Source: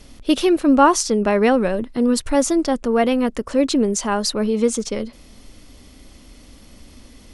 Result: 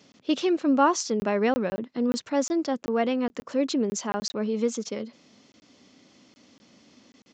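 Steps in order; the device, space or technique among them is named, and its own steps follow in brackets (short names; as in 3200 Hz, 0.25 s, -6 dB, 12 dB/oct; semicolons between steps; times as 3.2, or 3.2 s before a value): call with lost packets (HPF 140 Hz 24 dB/oct; downsampling 16000 Hz; packet loss packets of 20 ms random); gain -7.5 dB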